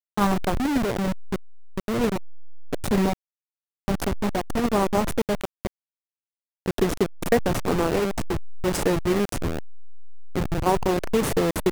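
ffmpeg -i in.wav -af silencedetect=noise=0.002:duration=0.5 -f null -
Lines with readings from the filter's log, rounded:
silence_start: 3.13
silence_end: 3.88 | silence_duration: 0.75
silence_start: 5.67
silence_end: 6.66 | silence_duration: 0.99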